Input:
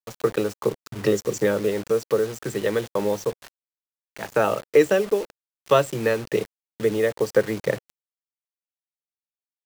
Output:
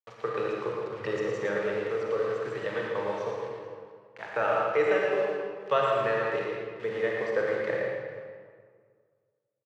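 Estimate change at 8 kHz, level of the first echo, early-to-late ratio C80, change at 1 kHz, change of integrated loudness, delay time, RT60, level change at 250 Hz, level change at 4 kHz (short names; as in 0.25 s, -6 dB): under -15 dB, -5.0 dB, -1.0 dB, -1.0 dB, -6.0 dB, 0.114 s, 1.9 s, -11.0 dB, -7.0 dB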